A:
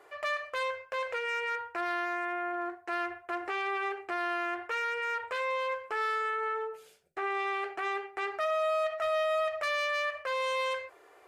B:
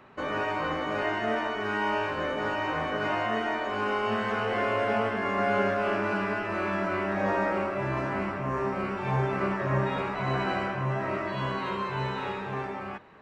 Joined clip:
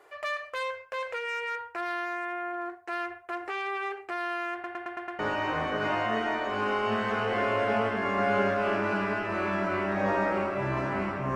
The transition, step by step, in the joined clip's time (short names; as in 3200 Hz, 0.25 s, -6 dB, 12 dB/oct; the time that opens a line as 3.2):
A
4.53 stutter in place 0.11 s, 6 plays
5.19 switch to B from 2.39 s